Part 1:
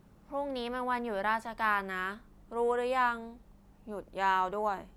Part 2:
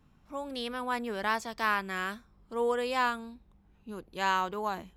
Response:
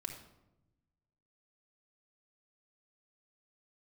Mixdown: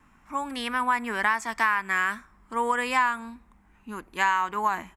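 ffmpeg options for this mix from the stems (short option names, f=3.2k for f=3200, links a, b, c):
-filter_complex "[0:a]highpass=440,volume=-12dB[a];[1:a]equalizer=f=125:t=o:w=1:g=-8,equalizer=f=250:t=o:w=1:g=4,equalizer=f=500:t=o:w=1:g=-5,equalizer=f=1k:t=o:w=1:g=8,equalizer=f=2k:t=o:w=1:g=12,equalizer=f=4k:t=o:w=1:g=-7,equalizer=f=8k:t=o:w=1:g=10,acompressor=threshold=-23dB:ratio=6,volume=-1,adelay=1.6,volume=2.5dB,asplit=2[b][c];[c]volume=-19dB[d];[2:a]atrim=start_sample=2205[e];[d][e]afir=irnorm=-1:irlink=0[f];[a][b][f]amix=inputs=3:normalize=0"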